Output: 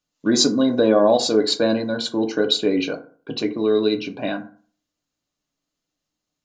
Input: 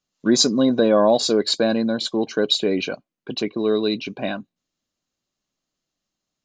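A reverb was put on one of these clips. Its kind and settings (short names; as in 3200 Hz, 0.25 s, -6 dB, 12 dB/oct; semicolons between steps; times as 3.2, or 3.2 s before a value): FDN reverb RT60 0.45 s, low-frequency decay 1×, high-frequency decay 0.45×, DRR 4.5 dB; gain -1 dB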